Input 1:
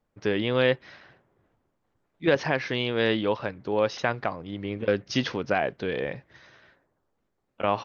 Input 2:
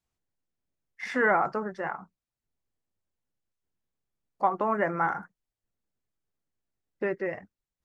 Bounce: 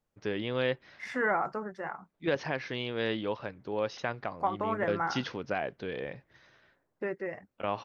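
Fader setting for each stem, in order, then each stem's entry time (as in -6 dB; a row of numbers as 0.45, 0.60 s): -7.5, -5.0 dB; 0.00, 0.00 s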